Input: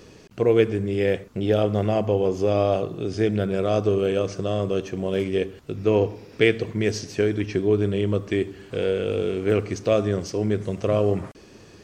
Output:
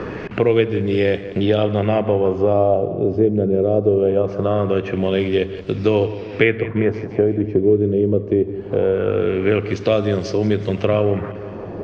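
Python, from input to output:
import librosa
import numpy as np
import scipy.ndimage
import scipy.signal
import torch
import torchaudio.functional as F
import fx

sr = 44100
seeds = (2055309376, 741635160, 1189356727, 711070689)

y = fx.quant_float(x, sr, bits=6)
y = fx.filter_lfo_lowpass(y, sr, shape='sine', hz=0.22, low_hz=430.0, high_hz=4300.0, q=1.7)
y = fx.echo_filtered(y, sr, ms=174, feedback_pct=49, hz=5000.0, wet_db=-16.5)
y = fx.band_squash(y, sr, depth_pct=70)
y = F.gain(torch.from_numpy(y), 3.0).numpy()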